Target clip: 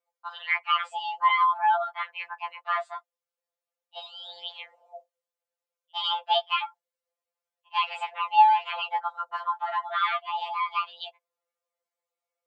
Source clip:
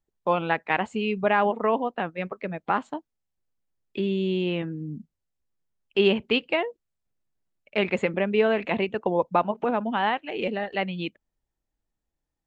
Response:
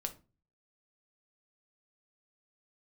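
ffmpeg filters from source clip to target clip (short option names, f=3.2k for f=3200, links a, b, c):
-af "afreqshift=420,afftfilt=real='re*2.83*eq(mod(b,8),0)':imag='im*2.83*eq(mod(b,8),0)':win_size=2048:overlap=0.75"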